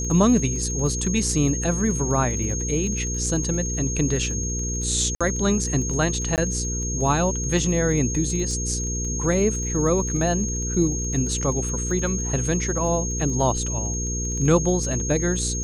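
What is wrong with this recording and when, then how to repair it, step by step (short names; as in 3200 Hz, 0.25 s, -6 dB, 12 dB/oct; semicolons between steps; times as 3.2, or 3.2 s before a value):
crackle 25/s -30 dBFS
hum 60 Hz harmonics 8 -28 dBFS
tone 6500 Hz -28 dBFS
5.15–5.21 gap 56 ms
6.36–6.38 gap 18 ms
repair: de-click; notch 6500 Hz, Q 30; de-hum 60 Hz, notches 8; interpolate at 5.15, 56 ms; interpolate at 6.36, 18 ms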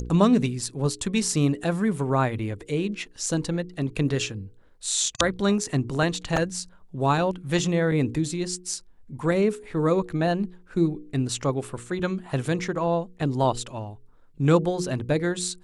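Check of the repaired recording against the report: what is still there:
none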